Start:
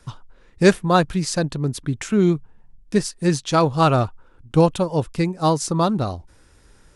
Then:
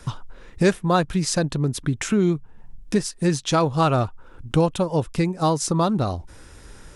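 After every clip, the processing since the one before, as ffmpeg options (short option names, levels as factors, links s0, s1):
-af "bandreject=f=4500:w=23,acompressor=threshold=0.02:ratio=2,volume=2.66"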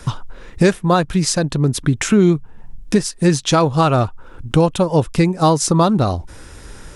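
-af "alimiter=limit=0.282:level=0:latency=1:release=385,volume=2.24"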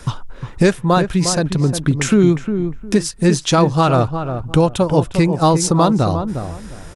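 -filter_complex "[0:a]asplit=2[s0][s1];[s1]adelay=356,lowpass=f=1200:p=1,volume=0.422,asplit=2[s2][s3];[s3]adelay=356,lowpass=f=1200:p=1,volume=0.24,asplit=2[s4][s5];[s5]adelay=356,lowpass=f=1200:p=1,volume=0.24[s6];[s0][s2][s4][s6]amix=inputs=4:normalize=0"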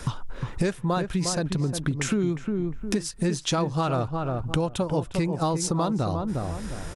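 -af "acompressor=threshold=0.0501:ratio=3"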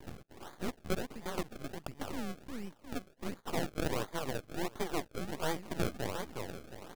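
-af "highpass=f=390:t=q:w=0.5412,highpass=f=390:t=q:w=1.307,lowpass=f=3100:t=q:w=0.5176,lowpass=f=3100:t=q:w=0.7071,lowpass=f=3100:t=q:w=1.932,afreqshift=-150,acrusher=samples=32:mix=1:aa=0.000001:lfo=1:lforange=32:lforate=1.4,aeval=exprs='max(val(0),0)':c=same,volume=0.75"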